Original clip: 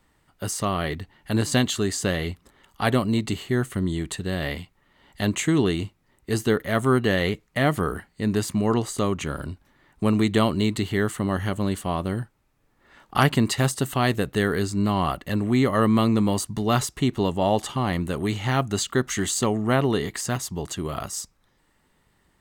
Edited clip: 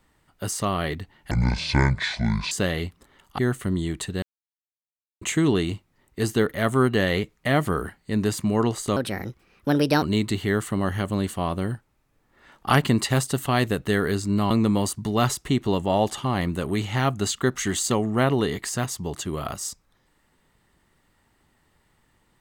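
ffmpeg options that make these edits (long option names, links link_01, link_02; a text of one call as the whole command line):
ffmpeg -i in.wav -filter_complex "[0:a]asplit=9[link_01][link_02][link_03][link_04][link_05][link_06][link_07][link_08][link_09];[link_01]atrim=end=1.314[link_10];[link_02]atrim=start=1.31:end=1.96,asetpts=PTS-STARTPTS,asetrate=23814,aresample=44100,atrim=end_sample=53083,asetpts=PTS-STARTPTS[link_11];[link_03]atrim=start=1.956:end=2.832[link_12];[link_04]atrim=start=3.488:end=4.33,asetpts=PTS-STARTPTS,afade=type=out:start_time=0.838:duration=0.004:curve=hsin[link_13];[link_05]atrim=start=4.33:end=5.32,asetpts=PTS-STARTPTS,volume=0[link_14];[link_06]atrim=start=5.32:end=9.074,asetpts=PTS-STARTPTS,afade=type=in:duration=0.004:curve=hsin[link_15];[link_07]atrim=start=9.07:end=10.5,asetpts=PTS-STARTPTS,asetrate=59535,aresample=44100,atrim=end_sample=46713,asetpts=PTS-STARTPTS[link_16];[link_08]atrim=start=10.496:end=14.982[link_17];[link_09]atrim=start=16.018[link_18];[link_10][link_11]acrossfade=duration=0.004:curve1=hsin:curve2=hsin[link_19];[link_19][link_12]acrossfade=duration=0.004:curve1=hsin:curve2=hsin[link_20];[link_13][link_14][link_15]concat=n=3:v=0:a=1[link_21];[link_20][link_21]acrossfade=duration=0.004:curve1=hsin:curve2=hsin[link_22];[link_22][link_16]acrossfade=duration=0.004:curve1=hsin:curve2=hsin[link_23];[link_23][link_17]acrossfade=duration=0.004:curve1=hsin:curve2=hsin[link_24];[link_24][link_18]acrossfade=duration=0.004:curve1=hsin:curve2=hsin" out.wav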